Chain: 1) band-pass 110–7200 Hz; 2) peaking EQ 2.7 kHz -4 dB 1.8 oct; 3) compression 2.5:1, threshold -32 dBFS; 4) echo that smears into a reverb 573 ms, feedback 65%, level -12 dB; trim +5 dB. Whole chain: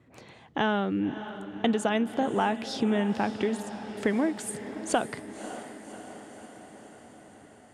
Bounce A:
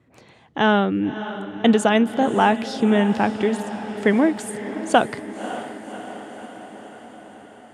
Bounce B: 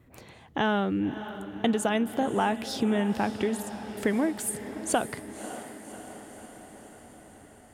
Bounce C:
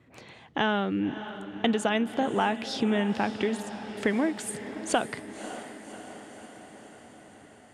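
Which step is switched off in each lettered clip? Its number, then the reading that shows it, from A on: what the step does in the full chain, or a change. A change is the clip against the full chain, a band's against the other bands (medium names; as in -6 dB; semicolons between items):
3, mean gain reduction 6.5 dB; 1, 8 kHz band +4.0 dB; 2, 4 kHz band +3.0 dB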